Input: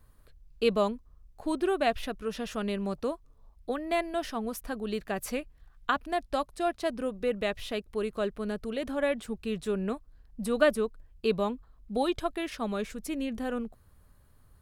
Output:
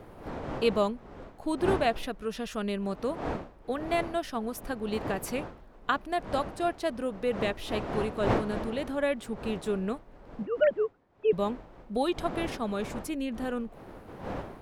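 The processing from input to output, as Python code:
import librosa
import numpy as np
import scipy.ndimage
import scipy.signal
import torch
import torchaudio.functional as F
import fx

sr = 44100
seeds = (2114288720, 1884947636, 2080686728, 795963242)

y = fx.sine_speech(x, sr, at=(10.41, 11.33))
y = fx.dmg_wind(y, sr, seeds[0], corner_hz=640.0, level_db=-39.0)
y = fx.transient(y, sr, attack_db=2, sustain_db=-2, at=(3.94, 5.06))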